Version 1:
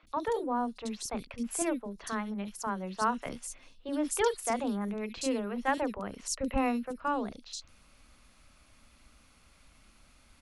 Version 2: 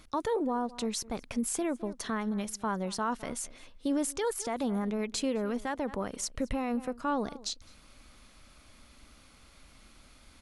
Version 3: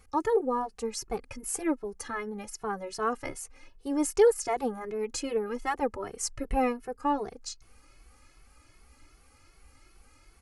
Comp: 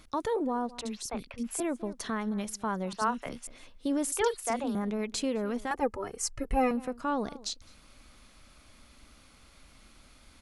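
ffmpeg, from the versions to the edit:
-filter_complex "[0:a]asplit=3[a][b][c];[1:a]asplit=5[d][e][f][g][h];[d]atrim=end=0.812[i];[a]atrim=start=0.808:end=1.602[j];[e]atrim=start=1.598:end=2.932[k];[b]atrim=start=2.928:end=3.472[l];[f]atrim=start=3.468:end=4.122[m];[c]atrim=start=4.118:end=4.752[n];[g]atrim=start=4.748:end=5.712[o];[2:a]atrim=start=5.708:end=6.712[p];[h]atrim=start=6.708[q];[i][j]acrossfade=d=0.004:c1=hsin:c2=hsin[r];[r][k]acrossfade=d=0.004:c1=hsin:c2=hsin[s];[s][l]acrossfade=d=0.004:c1=hsin:c2=hsin[t];[t][m]acrossfade=d=0.004:c1=hsin:c2=hsin[u];[u][n]acrossfade=d=0.004:c1=hsin:c2=hsin[v];[v][o]acrossfade=d=0.004:c1=hsin:c2=hsin[w];[w][p]acrossfade=d=0.004:c1=hsin:c2=hsin[x];[x][q]acrossfade=d=0.004:c1=hsin:c2=hsin"

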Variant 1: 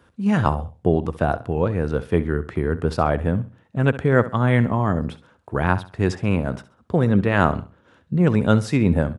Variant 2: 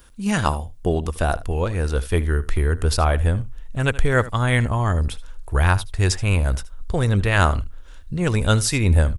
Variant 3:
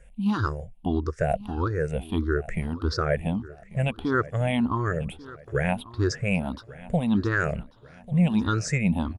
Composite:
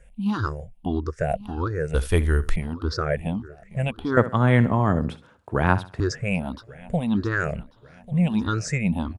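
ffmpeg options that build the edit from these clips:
-filter_complex "[2:a]asplit=3[a][b][c];[a]atrim=end=1.942[d];[1:a]atrim=start=1.938:end=2.562[e];[b]atrim=start=2.558:end=4.172[f];[0:a]atrim=start=4.168:end=6.002[g];[c]atrim=start=5.998[h];[d][e]acrossfade=d=0.004:c1=hsin:c2=hsin[i];[i][f]acrossfade=d=0.004:c1=hsin:c2=hsin[j];[j][g]acrossfade=d=0.004:c1=hsin:c2=hsin[k];[k][h]acrossfade=d=0.004:c1=hsin:c2=hsin"

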